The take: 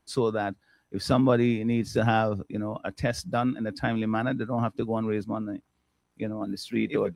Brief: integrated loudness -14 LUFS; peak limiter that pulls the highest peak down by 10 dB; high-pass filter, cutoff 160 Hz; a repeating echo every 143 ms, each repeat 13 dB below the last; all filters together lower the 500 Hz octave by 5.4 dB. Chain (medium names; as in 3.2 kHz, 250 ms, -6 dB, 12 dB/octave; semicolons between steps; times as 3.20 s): high-pass 160 Hz; peaking EQ 500 Hz -7 dB; peak limiter -22 dBFS; feedback delay 143 ms, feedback 22%, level -13 dB; trim +19 dB